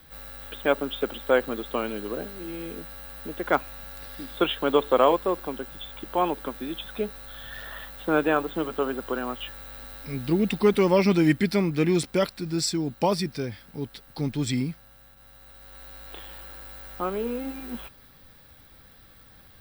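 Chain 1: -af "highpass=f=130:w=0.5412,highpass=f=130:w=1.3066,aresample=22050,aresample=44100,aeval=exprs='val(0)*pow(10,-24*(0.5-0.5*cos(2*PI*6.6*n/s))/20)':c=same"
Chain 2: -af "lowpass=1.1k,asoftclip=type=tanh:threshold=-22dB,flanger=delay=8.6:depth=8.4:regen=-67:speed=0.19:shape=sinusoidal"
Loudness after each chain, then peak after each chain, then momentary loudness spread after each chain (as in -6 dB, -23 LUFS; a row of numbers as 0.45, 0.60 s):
-33.0, -36.0 LUFS; -9.0, -23.0 dBFS; 20, 20 LU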